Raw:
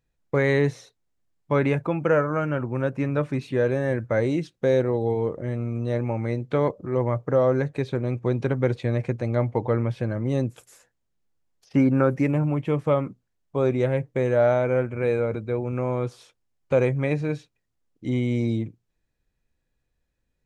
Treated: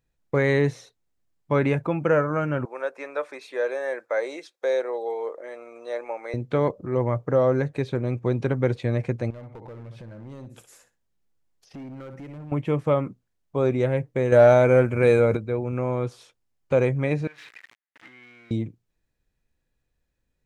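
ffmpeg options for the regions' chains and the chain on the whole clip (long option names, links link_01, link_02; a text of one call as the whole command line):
ffmpeg -i in.wav -filter_complex "[0:a]asettb=1/sr,asplit=3[link_01][link_02][link_03];[link_01]atrim=end=2.654[link_04];[link_02]atrim=start=2.65:end=6.34,asetpts=PTS-STARTPTS,afade=type=in:duration=0.004:curve=qsin,afade=type=out:start_time=3.686:duration=0.004:curve=qsin,highpass=frequency=480:width=0.5412,highpass=frequency=480:width=1.3066,bandreject=frequency=2900:width=8.1[link_05];[link_03]atrim=start=6.336[link_06];[link_04][link_05]acrossfade=duration=0.004:curve1=hsin:curve2=qsin[link_07];[link_07][link_06]acrossfade=duration=0.004:curve1=qsin:curve2=hsin,asettb=1/sr,asplit=3[link_08][link_09][link_10];[link_08]atrim=end=9.304[link_11];[link_09]atrim=start=9.3:end=12.52,asetpts=PTS-STARTPTS,afade=type=in:duration=0.004:curve=qsin,afade=type=out:start_time=3.216:duration=0.004:curve=qsin,aecho=1:1:62|124:0.237|0.0427,atrim=end_sample=142002,acompressor=threshold=-40dB:ratio=3:attack=3.2:release=140:knee=1:detection=peak,volume=35.5dB,asoftclip=hard,volume=-35.5dB[link_12];[link_10]atrim=start=12.516[link_13];[link_11][link_12]acrossfade=duration=0.004:curve1=hsin:curve2=qsin[link_14];[link_14][link_13]acrossfade=duration=0.004:curve1=qsin:curve2=hsin,asettb=1/sr,asplit=3[link_15][link_16][link_17];[link_15]atrim=end=14.324[link_18];[link_16]atrim=start=14.32:end=15.37,asetpts=PTS-STARTPTS,afade=type=in:duration=0.004:curve=qsin,afade=type=out:start_time=1.046:duration=0.004:curve=qsin,aemphasis=mode=production:type=cd,acontrast=55[link_19];[link_17]atrim=start=15.366[link_20];[link_18][link_19]acrossfade=duration=0.004:curve1=hsin:curve2=qsin[link_21];[link_21][link_20]acrossfade=duration=0.004:curve1=qsin:curve2=hsin,asettb=1/sr,asplit=3[link_22][link_23][link_24];[link_22]atrim=end=17.274[link_25];[link_23]atrim=start=17.27:end=18.51,asetpts=PTS-STARTPTS,afade=type=in:duration=0.004:curve=qsin,afade=type=out:start_time=1.236:duration=0.004:curve=qsin,aeval=exprs='val(0)+0.5*0.0355*sgn(val(0))':channel_layout=same,acompressor=threshold=-27dB:ratio=5:attack=3.2:release=140:knee=1:detection=peak,bandpass=frequency=1900:width_type=q:width=2.6[link_26];[link_24]atrim=start=18.506[link_27];[link_25][link_26]acrossfade=duration=0.004:curve1=hsin:curve2=qsin[link_28];[link_28][link_27]acrossfade=duration=0.004:curve1=qsin:curve2=hsin" out.wav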